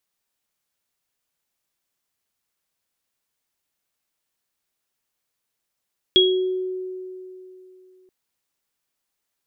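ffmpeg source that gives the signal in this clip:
-f lavfi -i "aevalsrc='0.188*pow(10,-3*t/3.02)*sin(2*PI*371*t)+0.335*pow(10,-3*t/0.46)*sin(2*PI*3310*t)':d=1.93:s=44100"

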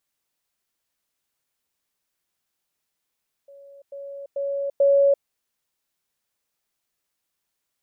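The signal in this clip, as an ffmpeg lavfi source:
-f lavfi -i "aevalsrc='pow(10,(-43.5+10*floor(t/0.44))/20)*sin(2*PI*559*t)*clip(min(mod(t,0.44),0.34-mod(t,0.44))/0.005,0,1)':d=1.76:s=44100"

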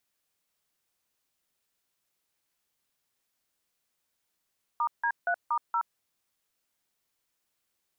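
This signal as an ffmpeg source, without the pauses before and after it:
-f lavfi -i "aevalsrc='0.0447*clip(min(mod(t,0.235),0.073-mod(t,0.235))/0.002,0,1)*(eq(floor(t/0.235),0)*(sin(2*PI*941*mod(t,0.235))+sin(2*PI*1209*mod(t,0.235)))+eq(floor(t/0.235),1)*(sin(2*PI*941*mod(t,0.235))+sin(2*PI*1633*mod(t,0.235)))+eq(floor(t/0.235),2)*(sin(2*PI*697*mod(t,0.235))+sin(2*PI*1477*mod(t,0.235)))+eq(floor(t/0.235),3)*(sin(2*PI*941*mod(t,0.235))+sin(2*PI*1209*mod(t,0.235)))+eq(floor(t/0.235),4)*(sin(2*PI*941*mod(t,0.235))+sin(2*PI*1336*mod(t,0.235))))':d=1.175:s=44100"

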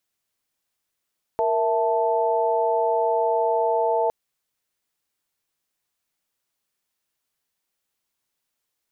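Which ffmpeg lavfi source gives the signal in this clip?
-f lavfi -i "aevalsrc='0.0708*(sin(2*PI*466.16*t)+sin(2*PI*659.26*t)+sin(2*PI*880*t))':d=2.71:s=44100"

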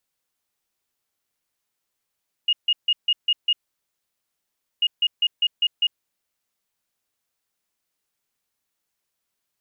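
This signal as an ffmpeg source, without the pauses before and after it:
-f lavfi -i "aevalsrc='0.168*sin(2*PI*2860*t)*clip(min(mod(mod(t,2.34),0.2),0.05-mod(mod(t,2.34),0.2))/0.005,0,1)*lt(mod(t,2.34),1.2)':d=4.68:s=44100"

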